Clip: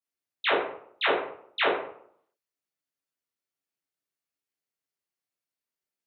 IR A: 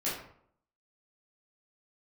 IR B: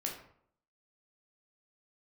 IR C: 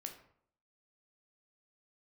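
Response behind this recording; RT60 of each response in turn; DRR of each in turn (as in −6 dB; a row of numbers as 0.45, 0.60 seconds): A; 0.65, 0.65, 0.65 seconds; −10.0, −1.0, 3.5 decibels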